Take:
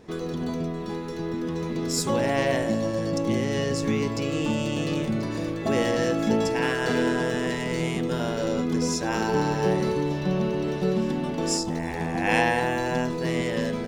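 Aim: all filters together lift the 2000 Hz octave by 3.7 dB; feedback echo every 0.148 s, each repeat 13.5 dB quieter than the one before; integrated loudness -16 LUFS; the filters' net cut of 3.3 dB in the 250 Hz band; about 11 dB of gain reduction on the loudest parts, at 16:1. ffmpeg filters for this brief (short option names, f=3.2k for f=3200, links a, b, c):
-af "equalizer=f=250:t=o:g=-4.5,equalizer=f=2k:t=o:g=4.5,acompressor=threshold=-26dB:ratio=16,aecho=1:1:148|296:0.211|0.0444,volume=14.5dB"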